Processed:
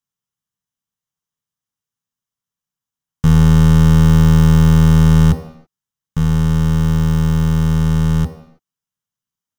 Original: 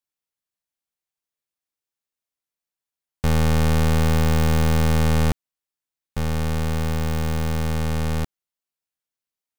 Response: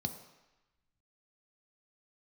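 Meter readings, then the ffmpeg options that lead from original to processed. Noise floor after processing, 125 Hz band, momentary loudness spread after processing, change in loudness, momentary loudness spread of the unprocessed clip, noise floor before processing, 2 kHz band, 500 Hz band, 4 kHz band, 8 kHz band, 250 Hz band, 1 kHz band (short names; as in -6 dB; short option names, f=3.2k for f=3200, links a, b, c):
under -85 dBFS, +10.5 dB, 8 LU, +9.0 dB, 8 LU, under -85 dBFS, +1.0 dB, +1.0 dB, +2.0 dB, +2.5 dB, +11.0 dB, +2.0 dB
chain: -filter_complex "[0:a]asplit=2[a][b];[1:a]atrim=start_sample=2205,afade=t=out:st=0.39:d=0.01,atrim=end_sample=17640[c];[b][c]afir=irnorm=-1:irlink=0,volume=-4dB[d];[a][d]amix=inputs=2:normalize=0,volume=3dB"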